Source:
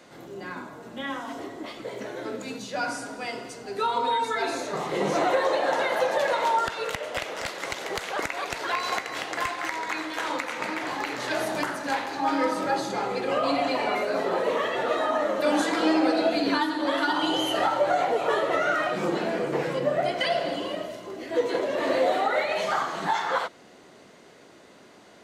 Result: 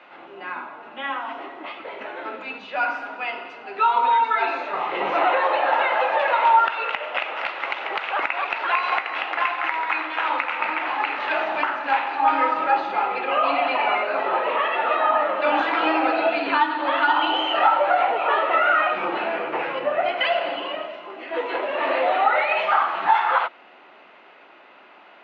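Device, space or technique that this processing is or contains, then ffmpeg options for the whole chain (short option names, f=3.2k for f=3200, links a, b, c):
phone earpiece: -af "highpass=430,equalizer=f=460:t=q:w=4:g=-6,equalizer=f=860:t=q:w=4:g=6,equalizer=f=1.3k:t=q:w=4:g=6,equalizer=f=2.6k:t=q:w=4:g=9,lowpass=f=3.1k:w=0.5412,lowpass=f=3.1k:w=1.3066,volume=3dB"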